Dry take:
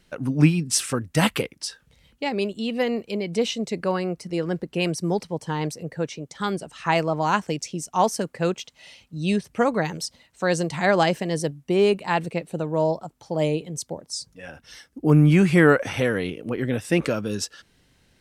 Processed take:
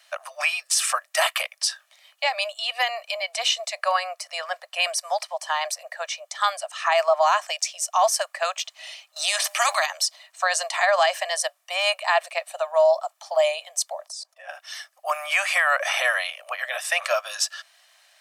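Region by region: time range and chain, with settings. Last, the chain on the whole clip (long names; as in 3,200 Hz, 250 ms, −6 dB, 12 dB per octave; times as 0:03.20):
0:09.16–0:09.86: low-shelf EQ 480 Hz −6 dB + hum removal 202.1 Hz, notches 5 + every bin compressed towards the loudest bin 2 to 1
0:14.08–0:14.49: parametric band 550 Hz +11.5 dB 1.8 octaves + output level in coarse steps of 22 dB
whole clip: Butterworth high-pass 610 Hz 96 dB per octave; comb filter 1.7 ms, depth 42%; brickwall limiter −18 dBFS; level +7.5 dB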